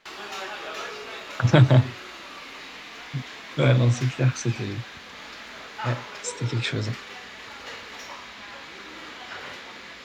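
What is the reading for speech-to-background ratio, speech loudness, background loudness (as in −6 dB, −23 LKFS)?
14.5 dB, −23.0 LKFS, −37.5 LKFS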